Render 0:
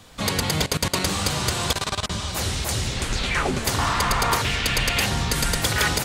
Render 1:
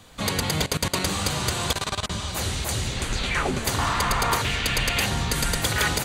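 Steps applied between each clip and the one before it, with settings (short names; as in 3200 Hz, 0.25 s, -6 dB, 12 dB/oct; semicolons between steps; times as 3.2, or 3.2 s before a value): notch 5300 Hz, Q 10; gain -1.5 dB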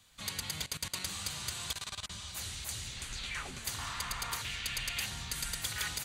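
passive tone stack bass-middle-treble 5-5-5; gain -3.5 dB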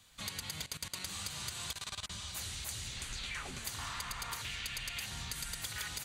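compressor, threshold -38 dBFS, peak gain reduction 7.5 dB; gain +1 dB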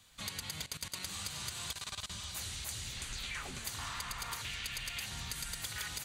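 thin delay 0.533 s, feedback 57%, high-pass 3800 Hz, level -14 dB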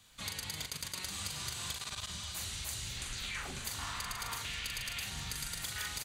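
doubler 41 ms -5 dB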